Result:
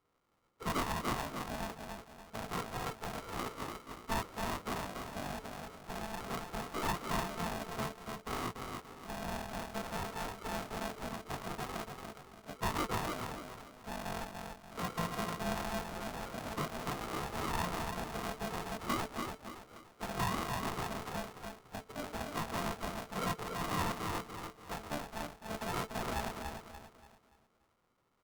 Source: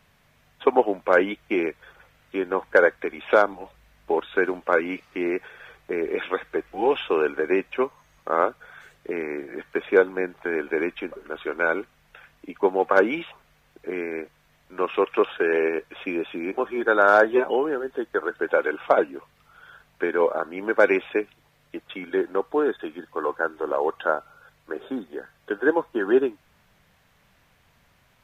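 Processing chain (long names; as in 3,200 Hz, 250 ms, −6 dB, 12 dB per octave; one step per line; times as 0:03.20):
loose part that buzzes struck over −35 dBFS, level −20 dBFS
high-pass filter 170 Hz 24 dB per octave
first difference
downward compressor 2 to 1, threshold −42 dBFS, peak gain reduction 8 dB
leveller curve on the samples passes 3
chorus effect 0.58 Hz, delay 19 ms, depth 3.6 ms
phase-vocoder pitch shift with formants kept −10 semitones
tube saturation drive 44 dB, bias 0.3
linear-phase brick-wall low-pass 1,000 Hz
double-tracking delay 13 ms −13 dB
repeating echo 289 ms, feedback 37%, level −5 dB
ring modulator with a square carrier 440 Hz
level +15.5 dB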